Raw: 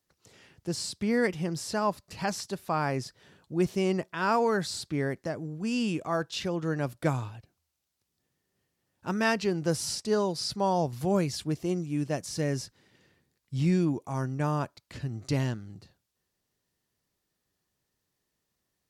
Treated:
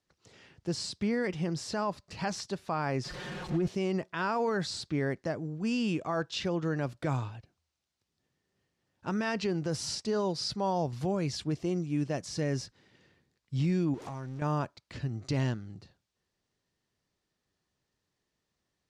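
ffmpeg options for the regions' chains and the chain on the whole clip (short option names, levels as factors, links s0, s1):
-filter_complex "[0:a]asettb=1/sr,asplit=3[s0][s1][s2];[s0]atrim=end=3.044[s3];[s1]atrim=start=3.04:end=3.68,asetpts=PTS-STARTPTS,afade=t=in:d=0.004:c=qsin,afade=t=out:st=0.636:d=0.004:c=qsin,aeval=exprs='val(0)+0.5*0.0178*sgn(val(0))':c=same,highshelf=f=2800:g=-7.5,aecho=1:1:5.6:0.76,atrim=end_sample=28224[s4];[s2]atrim=start=3.676[s5];[s3][s4]acrossfade=d=0.004:c1=hsin:c2=qsin[s6];[s6][s5]acrossfade=d=0.004:c1=qsin:c2=hsin,asettb=1/sr,asplit=3[s7][s8][s9];[s7]atrim=end=13.944[s10];[s8]atrim=start=13.94:end=14.42,asetpts=PTS-STARTPTS,afade=t=in:d=0.004:c=qsin,afade=t=out:st=0.476:d=0.004:c=qsin,aeval=exprs='val(0)+0.5*0.0106*sgn(val(0))':c=same,acompressor=threshold=0.0158:ratio=12:attack=3.2:release=140:knee=1:detection=peak[s11];[s9]atrim=start=14.416[s12];[s10][s11]acrossfade=d=0.004:c1=hsin:c2=qsin[s13];[s13][s12]acrossfade=d=0.004:c1=qsin:c2=hsin,lowpass=6300,alimiter=limit=0.0794:level=0:latency=1:release=34"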